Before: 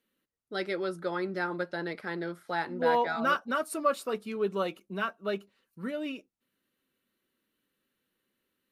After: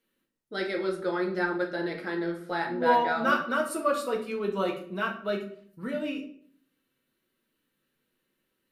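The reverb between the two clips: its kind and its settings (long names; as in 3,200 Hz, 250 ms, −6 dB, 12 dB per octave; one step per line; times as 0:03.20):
rectangular room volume 66 cubic metres, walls mixed, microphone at 0.64 metres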